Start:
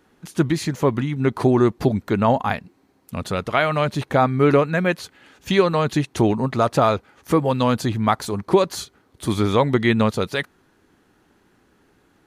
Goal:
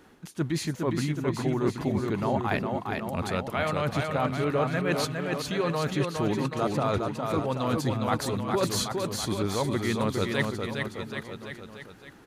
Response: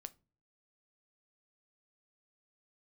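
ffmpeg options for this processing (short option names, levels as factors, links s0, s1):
-af "areverse,acompressor=threshold=0.0316:ratio=6,areverse,aecho=1:1:410|779|1111|1410|1679:0.631|0.398|0.251|0.158|0.1,volume=1.58"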